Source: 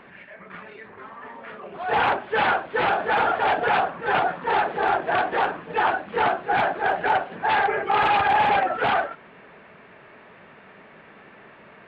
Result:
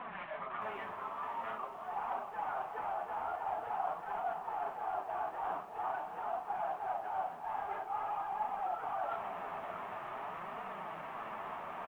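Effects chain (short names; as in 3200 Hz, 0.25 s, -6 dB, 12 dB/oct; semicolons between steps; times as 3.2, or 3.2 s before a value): CVSD 16 kbps; band shelf 910 Hz +12.5 dB 1.2 oct; de-hum 67.95 Hz, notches 17; reverse; compressor 10:1, threshold -34 dBFS, peak gain reduction 27.5 dB; reverse; flange 0.47 Hz, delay 3.9 ms, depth 8.5 ms, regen -4%; doubler 37 ms -12 dB; on a send: echo with dull and thin repeats by turns 0.322 s, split 920 Hz, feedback 68%, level -10 dB; on the sum: lo-fi delay 0.613 s, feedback 55%, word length 10-bit, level -13 dB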